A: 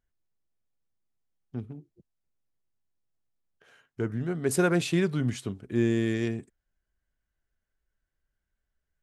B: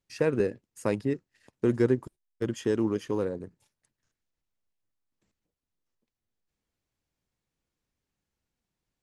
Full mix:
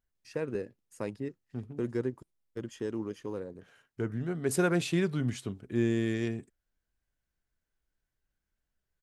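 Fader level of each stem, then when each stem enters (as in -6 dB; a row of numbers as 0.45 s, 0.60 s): -3.0 dB, -8.5 dB; 0.00 s, 0.15 s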